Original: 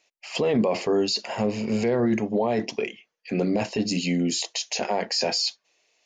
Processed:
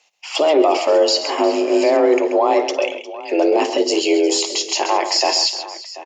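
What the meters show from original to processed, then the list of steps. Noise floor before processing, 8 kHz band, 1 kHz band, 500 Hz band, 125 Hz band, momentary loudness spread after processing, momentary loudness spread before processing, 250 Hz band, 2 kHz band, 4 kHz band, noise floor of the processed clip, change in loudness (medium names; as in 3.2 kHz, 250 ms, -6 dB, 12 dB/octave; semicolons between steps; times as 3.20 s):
-78 dBFS, +8.5 dB, +12.5 dB, +10.5 dB, under -20 dB, 8 LU, 7 LU, +4.0 dB, +7.5 dB, +8.5 dB, -37 dBFS, +8.5 dB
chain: frequency shift +150 Hz; multi-tap echo 55/133/357/736 ms -15.5/-10/-17.5/-16.5 dB; trim +7.5 dB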